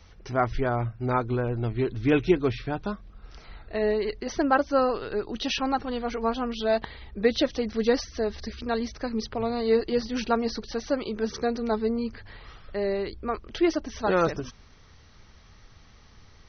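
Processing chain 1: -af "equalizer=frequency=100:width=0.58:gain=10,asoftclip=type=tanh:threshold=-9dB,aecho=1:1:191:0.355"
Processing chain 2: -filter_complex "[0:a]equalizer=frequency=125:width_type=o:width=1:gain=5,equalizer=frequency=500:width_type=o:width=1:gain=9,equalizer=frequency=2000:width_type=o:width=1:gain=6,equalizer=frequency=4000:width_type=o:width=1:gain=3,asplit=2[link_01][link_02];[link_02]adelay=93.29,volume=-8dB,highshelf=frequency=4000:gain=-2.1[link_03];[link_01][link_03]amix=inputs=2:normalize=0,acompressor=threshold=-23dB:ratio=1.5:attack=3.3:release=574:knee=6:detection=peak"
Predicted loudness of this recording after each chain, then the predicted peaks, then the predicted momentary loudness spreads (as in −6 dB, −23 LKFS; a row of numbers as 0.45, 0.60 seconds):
−24.5, −24.5 LKFS; −9.0, −7.5 dBFS; 10, 9 LU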